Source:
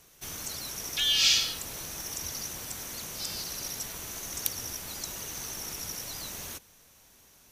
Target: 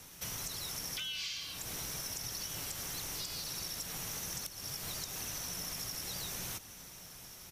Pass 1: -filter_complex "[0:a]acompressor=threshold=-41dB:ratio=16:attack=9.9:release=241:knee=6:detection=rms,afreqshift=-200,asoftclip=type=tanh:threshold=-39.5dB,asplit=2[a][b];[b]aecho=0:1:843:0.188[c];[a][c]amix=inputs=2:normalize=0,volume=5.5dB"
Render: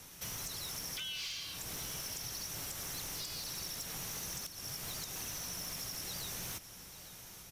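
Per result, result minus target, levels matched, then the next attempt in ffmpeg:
echo 0.591 s early; soft clip: distortion +10 dB
-filter_complex "[0:a]acompressor=threshold=-41dB:ratio=16:attack=9.9:release=241:knee=6:detection=rms,afreqshift=-200,asoftclip=type=tanh:threshold=-39.5dB,asplit=2[a][b];[b]aecho=0:1:1434:0.188[c];[a][c]amix=inputs=2:normalize=0,volume=5.5dB"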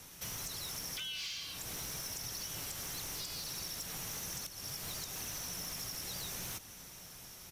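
soft clip: distortion +10 dB
-filter_complex "[0:a]acompressor=threshold=-41dB:ratio=16:attack=9.9:release=241:knee=6:detection=rms,afreqshift=-200,asoftclip=type=tanh:threshold=-31.5dB,asplit=2[a][b];[b]aecho=0:1:1434:0.188[c];[a][c]amix=inputs=2:normalize=0,volume=5.5dB"

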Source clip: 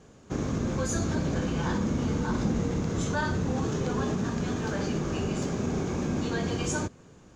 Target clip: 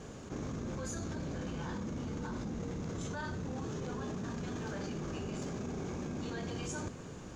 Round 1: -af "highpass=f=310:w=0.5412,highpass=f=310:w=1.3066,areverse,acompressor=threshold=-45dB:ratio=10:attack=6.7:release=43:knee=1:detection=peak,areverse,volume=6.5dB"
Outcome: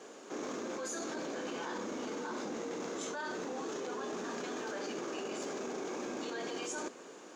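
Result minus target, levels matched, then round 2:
250 Hz band -2.5 dB
-af "areverse,acompressor=threshold=-45dB:ratio=10:attack=6.7:release=43:knee=1:detection=peak,areverse,volume=6.5dB"

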